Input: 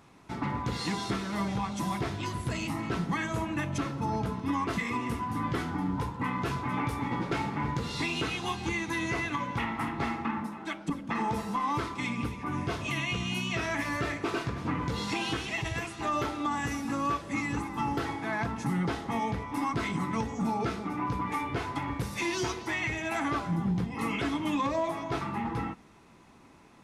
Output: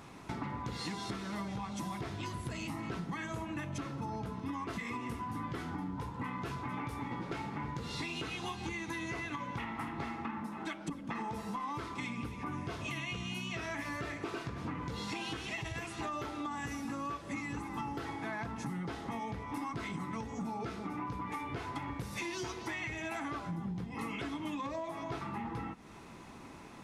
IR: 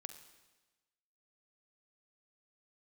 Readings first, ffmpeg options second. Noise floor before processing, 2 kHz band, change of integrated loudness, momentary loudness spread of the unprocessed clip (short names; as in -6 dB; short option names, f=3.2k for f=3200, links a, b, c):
-54 dBFS, -7.5 dB, -7.5 dB, 3 LU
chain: -af "acompressor=threshold=-43dB:ratio=6,volume=5.5dB"